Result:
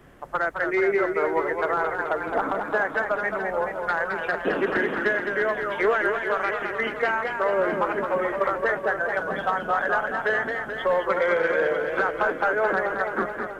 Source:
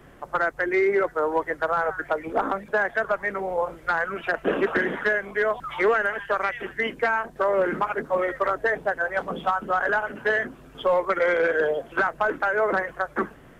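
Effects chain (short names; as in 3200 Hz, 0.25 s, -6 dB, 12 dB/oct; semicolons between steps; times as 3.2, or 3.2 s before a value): warbling echo 0.215 s, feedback 69%, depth 122 cents, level -6 dB; gain -1.5 dB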